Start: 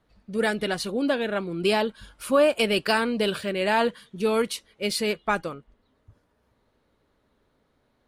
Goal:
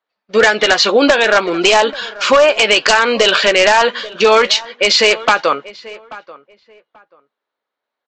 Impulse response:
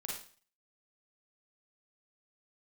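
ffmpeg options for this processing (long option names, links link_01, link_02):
-filter_complex "[0:a]highpass=680,agate=range=-33dB:threshold=-49dB:ratio=3:detection=peak,lowpass=5200,acompressor=threshold=-28dB:ratio=8,aresample=16000,aeval=exprs='0.0562*(abs(mod(val(0)/0.0562+3,4)-2)-1)':channel_layout=same,aresample=44100,asplit=2[link_01][link_02];[link_02]adelay=14,volume=-13dB[link_03];[link_01][link_03]amix=inputs=2:normalize=0,asplit=2[link_04][link_05];[link_05]adelay=835,lowpass=frequency=2000:poles=1,volume=-21.5dB,asplit=2[link_06][link_07];[link_07]adelay=835,lowpass=frequency=2000:poles=1,volume=0.22[link_08];[link_04][link_06][link_08]amix=inputs=3:normalize=0,alimiter=level_in=27dB:limit=-1dB:release=50:level=0:latency=1,volume=-1dB"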